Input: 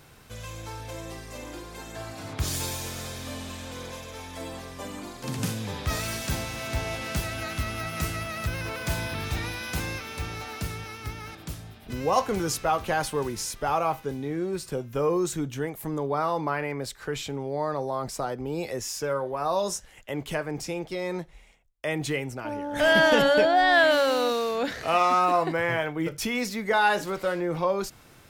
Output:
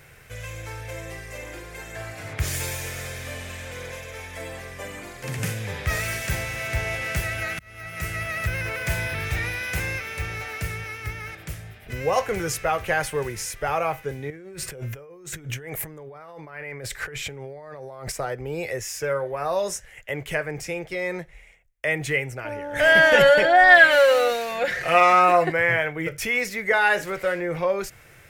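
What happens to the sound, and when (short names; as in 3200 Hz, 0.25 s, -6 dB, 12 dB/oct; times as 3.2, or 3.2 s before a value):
7.59–8.3 fade in
14.3–18.12 negative-ratio compressor -39 dBFS
23.14–25.5 comb 5.6 ms, depth 80%
whole clip: graphic EQ 125/250/500/1000/2000/4000 Hz +3/-11/+4/-7/+10/-7 dB; gain +2.5 dB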